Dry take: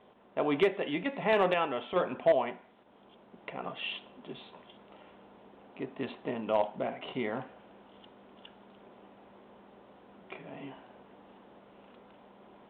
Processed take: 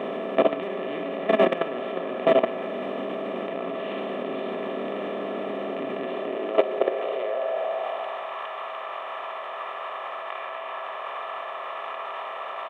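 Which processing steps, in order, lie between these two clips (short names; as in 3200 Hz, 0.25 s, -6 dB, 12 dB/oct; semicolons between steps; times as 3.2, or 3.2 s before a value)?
per-bin compression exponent 0.2; low shelf 190 Hz +9.5 dB; comb 1.7 ms, depth 43%; Schroeder reverb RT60 1.3 s, combs from 29 ms, DRR 5.5 dB; level quantiser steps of 15 dB; high-pass sweep 240 Hz -> 1000 Hz, 6.02–8.4; gain -2.5 dB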